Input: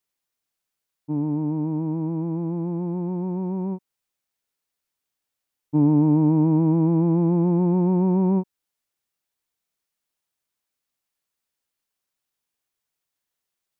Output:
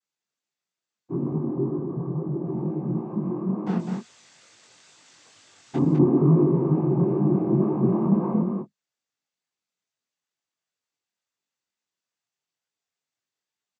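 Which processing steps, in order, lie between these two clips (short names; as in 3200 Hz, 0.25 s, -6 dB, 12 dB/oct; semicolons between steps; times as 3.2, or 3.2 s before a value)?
1.36–2.44 LPF 1100 Hz 12 dB/oct; 3.66–5.76 power-law curve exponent 0.5; on a send: echo 0.202 s -5 dB; on the sum: noise vocoder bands 16; chorus 2.2 Hz, delay 19 ms, depth 4.3 ms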